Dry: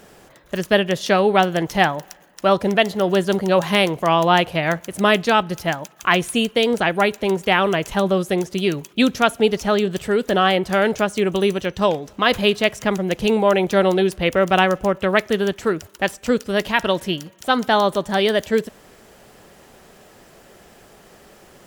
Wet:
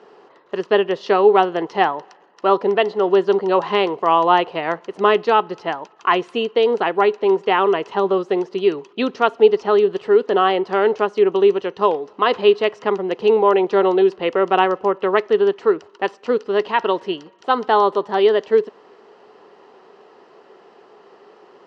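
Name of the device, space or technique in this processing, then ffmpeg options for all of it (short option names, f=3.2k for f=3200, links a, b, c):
phone earpiece: -af "highpass=400,equalizer=f=410:t=q:w=4:g=8,equalizer=f=600:t=q:w=4:g=-7,equalizer=f=1k:t=q:w=4:g=4,equalizer=f=1.6k:t=q:w=4:g=-7,equalizer=f=2.3k:t=q:w=4:g=-10,equalizer=f=3.5k:t=q:w=4:g=-10,lowpass=f=3.8k:w=0.5412,lowpass=f=3.8k:w=1.3066,volume=2.5dB"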